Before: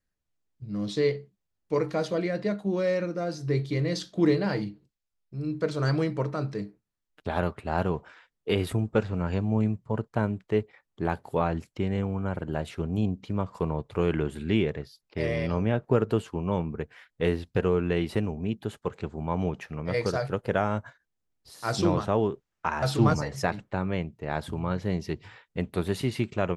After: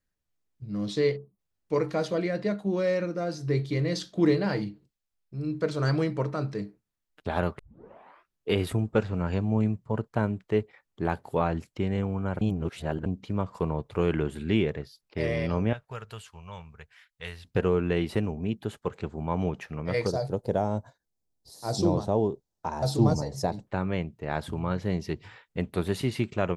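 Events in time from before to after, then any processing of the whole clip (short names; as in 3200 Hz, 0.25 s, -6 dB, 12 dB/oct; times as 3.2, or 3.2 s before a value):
1.17–1.39 spectral delete 1300–8400 Hz
7.59 tape start 0.90 s
12.41–13.06 reverse
15.73–17.45 passive tone stack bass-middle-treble 10-0-10
20.07–23.67 band shelf 1900 Hz -14 dB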